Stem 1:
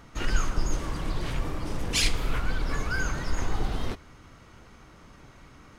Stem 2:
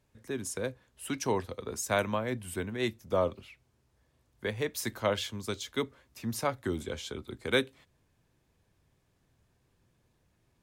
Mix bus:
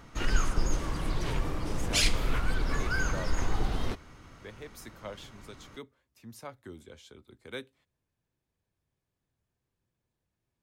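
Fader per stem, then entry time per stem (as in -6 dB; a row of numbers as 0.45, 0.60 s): -1.0, -13.0 dB; 0.00, 0.00 s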